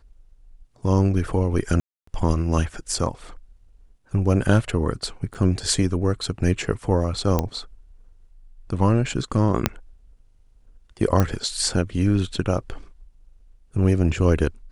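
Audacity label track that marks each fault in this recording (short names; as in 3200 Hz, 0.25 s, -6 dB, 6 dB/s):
1.800000	2.070000	gap 0.274 s
5.340000	5.350000	gap 7.3 ms
7.390000	7.390000	pop -8 dBFS
9.660000	9.660000	pop -2 dBFS
11.200000	11.200000	pop -7 dBFS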